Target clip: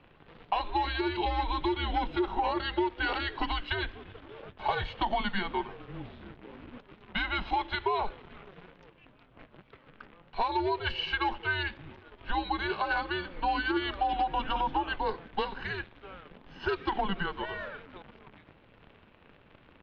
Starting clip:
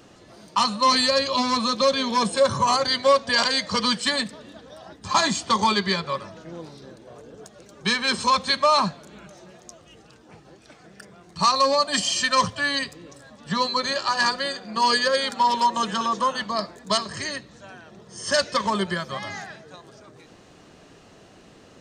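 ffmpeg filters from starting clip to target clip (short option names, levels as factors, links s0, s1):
-af "acompressor=threshold=0.0891:ratio=16,acrusher=bits=8:dc=4:mix=0:aa=0.000001,atempo=1.1,highpass=f=170:t=q:w=0.5412,highpass=f=170:t=q:w=1.307,lowpass=f=3400:t=q:w=0.5176,lowpass=f=3400:t=q:w=0.7071,lowpass=f=3400:t=q:w=1.932,afreqshift=-190,volume=0.708"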